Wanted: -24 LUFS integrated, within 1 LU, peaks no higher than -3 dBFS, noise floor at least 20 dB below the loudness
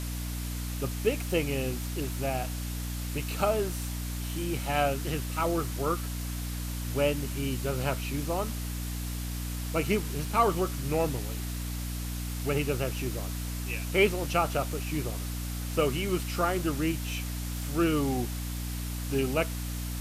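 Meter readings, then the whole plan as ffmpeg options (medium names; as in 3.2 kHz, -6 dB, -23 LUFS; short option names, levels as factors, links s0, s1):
hum 60 Hz; highest harmonic 300 Hz; hum level -32 dBFS; noise floor -34 dBFS; noise floor target -51 dBFS; loudness -31.0 LUFS; peak level -11.5 dBFS; loudness target -24.0 LUFS
-> -af "bandreject=f=60:t=h:w=4,bandreject=f=120:t=h:w=4,bandreject=f=180:t=h:w=4,bandreject=f=240:t=h:w=4,bandreject=f=300:t=h:w=4"
-af "afftdn=nr=17:nf=-34"
-af "volume=2.24"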